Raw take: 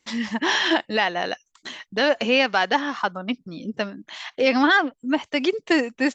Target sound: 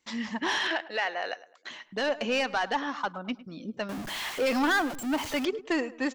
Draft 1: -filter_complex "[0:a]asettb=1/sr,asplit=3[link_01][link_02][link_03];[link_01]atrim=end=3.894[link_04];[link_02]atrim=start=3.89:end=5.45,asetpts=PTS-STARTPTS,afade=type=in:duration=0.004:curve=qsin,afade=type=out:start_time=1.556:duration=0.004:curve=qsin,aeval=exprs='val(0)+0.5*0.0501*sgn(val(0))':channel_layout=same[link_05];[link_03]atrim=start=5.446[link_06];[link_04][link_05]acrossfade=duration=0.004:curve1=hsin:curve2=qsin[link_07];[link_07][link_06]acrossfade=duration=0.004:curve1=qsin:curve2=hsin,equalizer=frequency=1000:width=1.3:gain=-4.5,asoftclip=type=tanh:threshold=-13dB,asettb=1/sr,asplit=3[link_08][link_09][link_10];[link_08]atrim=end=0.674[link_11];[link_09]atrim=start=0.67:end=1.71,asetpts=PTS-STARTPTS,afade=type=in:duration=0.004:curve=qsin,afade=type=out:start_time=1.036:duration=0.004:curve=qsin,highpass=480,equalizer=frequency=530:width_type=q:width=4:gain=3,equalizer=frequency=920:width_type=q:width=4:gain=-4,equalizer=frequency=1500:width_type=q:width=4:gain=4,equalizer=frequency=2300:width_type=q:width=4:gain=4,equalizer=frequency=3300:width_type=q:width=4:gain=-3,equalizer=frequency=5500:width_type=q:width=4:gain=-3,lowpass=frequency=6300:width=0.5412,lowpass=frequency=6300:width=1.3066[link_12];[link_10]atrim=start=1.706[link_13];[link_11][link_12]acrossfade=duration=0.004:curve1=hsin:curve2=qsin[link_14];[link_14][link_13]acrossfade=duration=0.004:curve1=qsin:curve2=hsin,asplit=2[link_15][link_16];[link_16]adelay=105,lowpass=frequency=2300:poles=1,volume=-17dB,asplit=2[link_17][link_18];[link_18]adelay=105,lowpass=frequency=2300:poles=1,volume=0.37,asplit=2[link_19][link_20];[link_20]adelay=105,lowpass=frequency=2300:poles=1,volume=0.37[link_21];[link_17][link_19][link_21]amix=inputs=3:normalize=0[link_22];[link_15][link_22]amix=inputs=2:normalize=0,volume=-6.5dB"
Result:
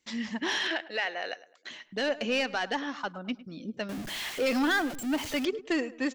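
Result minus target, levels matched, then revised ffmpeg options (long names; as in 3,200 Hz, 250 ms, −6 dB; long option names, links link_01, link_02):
1,000 Hz band −3.5 dB
-filter_complex "[0:a]asettb=1/sr,asplit=3[link_01][link_02][link_03];[link_01]atrim=end=3.894[link_04];[link_02]atrim=start=3.89:end=5.45,asetpts=PTS-STARTPTS,afade=type=in:duration=0.004:curve=qsin,afade=type=out:start_time=1.556:duration=0.004:curve=qsin,aeval=exprs='val(0)+0.5*0.0501*sgn(val(0))':channel_layout=same[link_05];[link_03]atrim=start=5.446[link_06];[link_04][link_05]acrossfade=duration=0.004:curve1=hsin:curve2=qsin[link_07];[link_07][link_06]acrossfade=duration=0.004:curve1=qsin:curve2=hsin,equalizer=frequency=1000:width=1.3:gain=2.5,asoftclip=type=tanh:threshold=-13dB,asettb=1/sr,asplit=3[link_08][link_09][link_10];[link_08]atrim=end=0.674[link_11];[link_09]atrim=start=0.67:end=1.71,asetpts=PTS-STARTPTS,afade=type=in:duration=0.004:curve=qsin,afade=type=out:start_time=1.036:duration=0.004:curve=qsin,highpass=480,equalizer=frequency=530:width_type=q:width=4:gain=3,equalizer=frequency=920:width_type=q:width=4:gain=-4,equalizer=frequency=1500:width_type=q:width=4:gain=4,equalizer=frequency=2300:width_type=q:width=4:gain=4,equalizer=frequency=3300:width_type=q:width=4:gain=-3,equalizer=frequency=5500:width_type=q:width=4:gain=-3,lowpass=frequency=6300:width=0.5412,lowpass=frequency=6300:width=1.3066[link_12];[link_10]atrim=start=1.706[link_13];[link_11][link_12]acrossfade=duration=0.004:curve1=hsin:curve2=qsin[link_14];[link_14][link_13]acrossfade=duration=0.004:curve1=qsin:curve2=hsin,asplit=2[link_15][link_16];[link_16]adelay=105,lowpass=frequency=2300:poles=1,volume=-17dB,asplit=2[link_17][link_18];[link_18]adelay=105,lowpass=frequency=2300:poles=1,volume=0.37,asplit=2[link_19][link_20];[link_20]adelay=105,lowpass=frequency=2300:poles=1,volume=0.37[link_21];[link_17][link_19][link_21]amix=inputs=3:normalize=0[link_22];[link_15][link_22]amix=inputs=2:normalize=0,volume=-6.5dB"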